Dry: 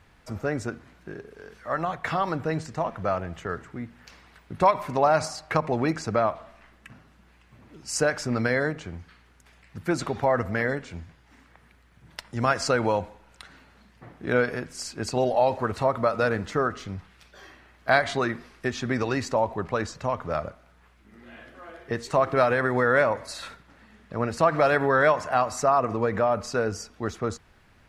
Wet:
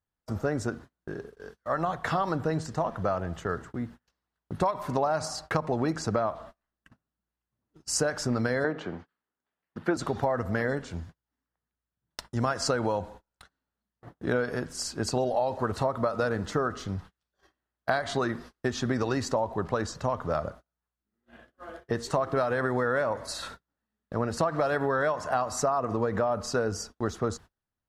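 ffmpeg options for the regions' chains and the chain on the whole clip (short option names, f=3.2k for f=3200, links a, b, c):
-filter_complex "[0:a]asettb=1/sr,asplit=3[a][b][c];[a]atrim=end=8.644[d];[b]atrim=start=8.64:end=9.97,asetpts=PTS-STARTPTS,afade=t=in:d=0.004:c=qsin,afade=t=out:st=1.326:d=0.004:c=qsin,acrossover=split=190 3800:gain=0.1 1 0.112[e][f][g];[e][f][g]amix=inputs=3:normalize=0,acontrast=21[h];[c]atrim=start=9.966[i];[d][h]acrossfade=d=0.004:c1=hsin:c2=qsin[j];[j][i]acrossfade=d=0.004:c1=qsin:c2=hsin,agate=range=-34dB:threshold=-44dB:ratio=16:detection=peak,equalizer=f=2.3k:w=2.6:g=-9.5,acompressor=threshold=-25dB:ratio=6,volume=2dB"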